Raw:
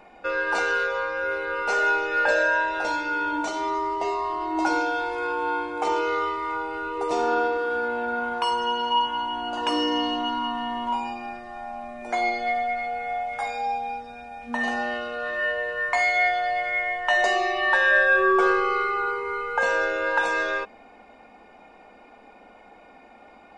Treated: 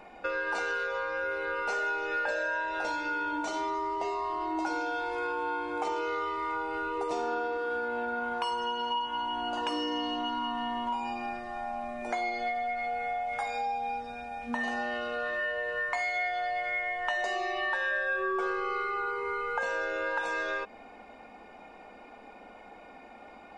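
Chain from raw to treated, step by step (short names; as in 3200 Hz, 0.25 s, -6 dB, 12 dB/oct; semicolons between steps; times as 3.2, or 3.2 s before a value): compressor 4:1, threshold -30 dBFS, peak gain reduction 12.5 dB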